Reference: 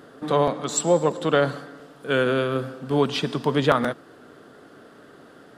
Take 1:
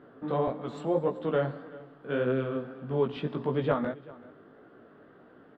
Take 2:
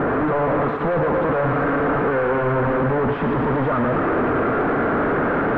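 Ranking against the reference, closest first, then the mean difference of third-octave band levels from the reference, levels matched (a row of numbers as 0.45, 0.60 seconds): 1, 2; 5.0, 12.0 decibels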